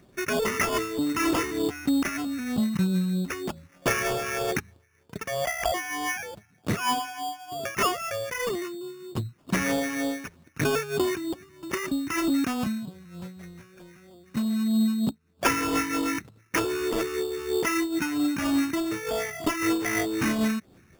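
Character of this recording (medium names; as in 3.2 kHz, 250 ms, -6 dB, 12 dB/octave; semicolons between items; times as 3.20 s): phasing stages 4, 3.2 Hz, lowest notch 600–1800 Hz; aliases and images of a low sample rate 4 kHz, jitter 0%; random flutter of the level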